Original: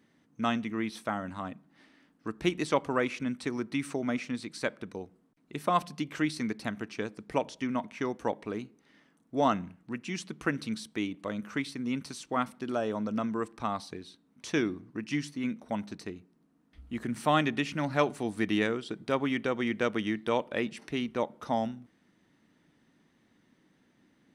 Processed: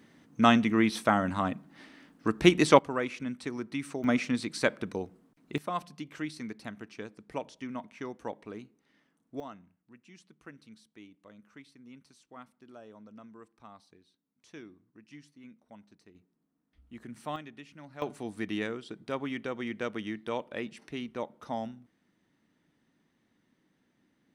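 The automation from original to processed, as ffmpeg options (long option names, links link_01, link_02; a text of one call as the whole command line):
ffmpeg -i in.wav -af "asetnsamples=nb_out_samples=441:pad=0,asendcmd='2.79 volume volume -3dB;4.04 volume volume 5dB;5.58 volume volume -7dB;9.4 volume volume -19dB;16.15 volume volume -11dB;17.36 volume volume -18dB;18.02 volume volume -5.5dB',volume=8dB" out.wav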